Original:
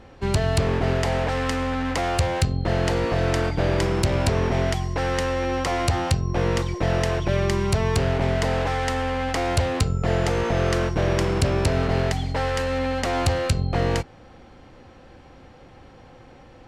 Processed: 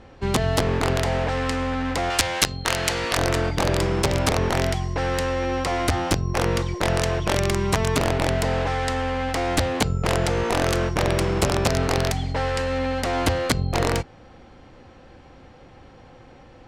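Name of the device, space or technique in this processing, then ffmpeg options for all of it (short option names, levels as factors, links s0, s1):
overflowing digital effects unit: -filter_complex "[0:a]aeval=exprs='(mod(4.47*val(0)+1,2)-1)/4.47':c=same,lowpass=10000,asettb=1/sr,asplit=3[s0][s1][s2];[s0]atrim=end=2.104[s3];[s1]atrim=start=2.1:end=3.17,asetpts=PTS-STARTPTS,afade=t=in:d=0.004:c=qsin,afade=t=out:st=1.066:d=0.004:c=qsin,tiltshelf=f=970:g=-7.5[s4];[s2]atrim=start=3.166[s5];[s3][s4]acrossfade=d=0.004:c1=hsin:c2=qsin[s6];[s6][s5]acrossfade=d=0.004:c1=qsin:c2=hsin"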